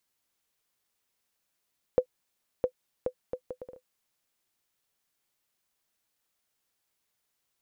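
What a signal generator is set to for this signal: bouncing ball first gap 0.66 s, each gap 0.64, 505 Hz, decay 79 ms -11.5 dBFS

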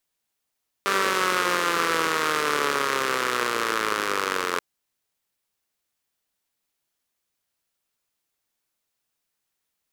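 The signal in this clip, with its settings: four-cylinder engine model, changing speed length 3.73 s, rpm 5900, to 2600, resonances 450/1200 Hz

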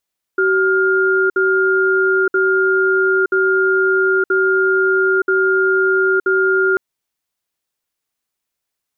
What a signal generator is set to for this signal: cadence 380 Hz, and 1.41 kHz, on 0.92 s, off 0.06 s, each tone -14.5 dBFS 6.39 s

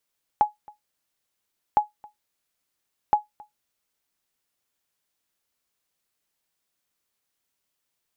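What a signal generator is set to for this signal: sonar ping 840 Hz, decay 0.15 s, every 1.36 s, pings 3, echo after 0.27 s, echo -26 dB -9.5 dBFS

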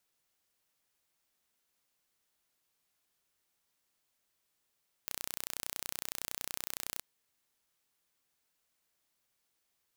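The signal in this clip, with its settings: pulse train 30.8 per s, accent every 0, -10 dBFS 1.94 s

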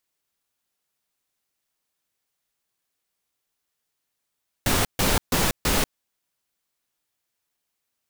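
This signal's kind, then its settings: noise bursts pink, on 0.19 s, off 0.14 s, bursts 4, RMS -21 dBFS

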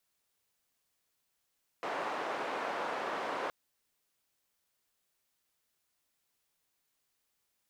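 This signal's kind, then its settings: noise band 460–990 Hz, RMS -36.5 dBFS 1.67 s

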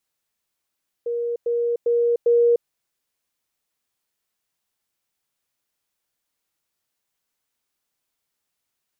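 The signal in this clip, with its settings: level ladder 473 Hz -22 dBFS, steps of 3 dB, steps 4, 0.30 s 0.10 s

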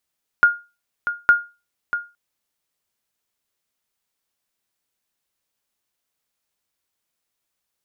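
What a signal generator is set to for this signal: sonar ping 1.42 kHz, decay 0.28 s, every 0.86 s, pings 2, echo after 0.64 s, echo -10.5 dB -5 dBFS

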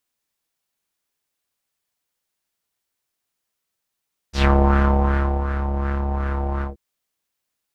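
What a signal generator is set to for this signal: synth patch with filter wobble C#2, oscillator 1 square, oscillator 2 level -7 dB, noise -6.5 dB, filter lowpass, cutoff 360 Hz, filter envelope 4 oct, filter decay 0.14 s, attack 108 ms, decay 1.02 s, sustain -11 dB, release 0.14 s, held 2.29 s, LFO 2.7 Hz, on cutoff 0.5 oct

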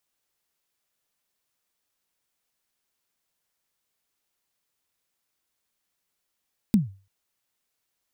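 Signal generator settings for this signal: kick drum length 0.34 s, from 230 Hz, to 97 Hz, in 150 ms, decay 0.35 s, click on, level -11.5 dB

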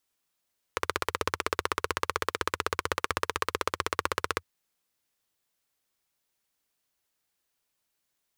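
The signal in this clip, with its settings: single-cylinder engine model, steady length 3.66 s, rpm 1900, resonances 86/450/1100 Hz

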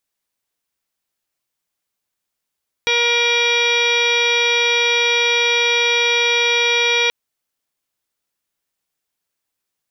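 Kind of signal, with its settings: steady additive tone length 4.23 s, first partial 475 Hz, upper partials -4.5/-6.5/-5/5.5/-8.5/0/-1.5/-17.5/-16/-16.5/-8 dB, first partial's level -22 dB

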